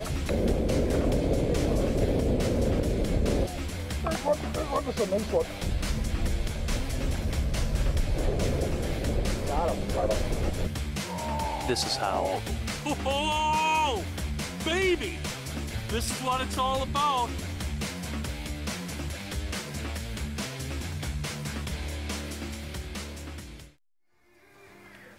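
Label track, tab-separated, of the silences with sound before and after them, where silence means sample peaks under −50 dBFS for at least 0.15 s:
23.730000	24.330000	silence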